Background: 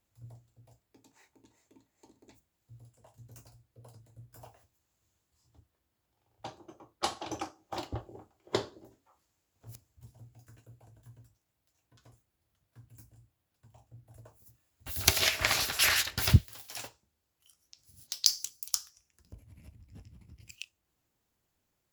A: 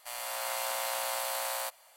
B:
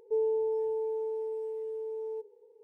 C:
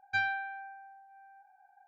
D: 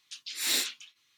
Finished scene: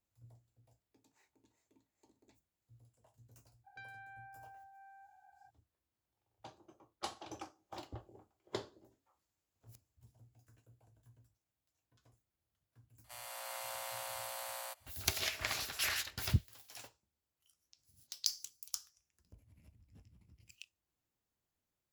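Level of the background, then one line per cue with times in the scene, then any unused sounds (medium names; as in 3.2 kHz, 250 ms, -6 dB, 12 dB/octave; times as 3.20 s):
background -10 dB
3.64 s: add C -2 dB, fades 0.02 s + compression 5:1, threshold -50 dBFS
13.04 s: add A -10 dB
not used: B, D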